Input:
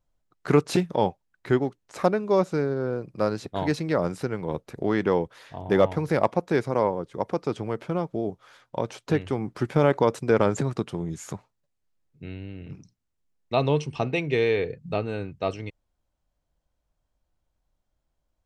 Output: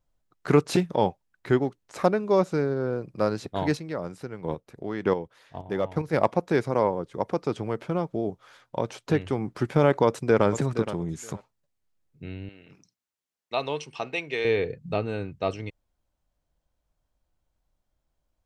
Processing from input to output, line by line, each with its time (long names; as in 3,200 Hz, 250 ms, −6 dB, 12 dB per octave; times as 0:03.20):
0:03.75–0:06.12: square-wave tremolo 1.1 Hz → 2.8 Hz, depth 60%, duty 15%
0:10.05–0:10.46: delay throw 470 ms, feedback 15%, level −11.5 dB
0:12.49–0:14.45: high-pass filter 880 Hz 6 dB per octave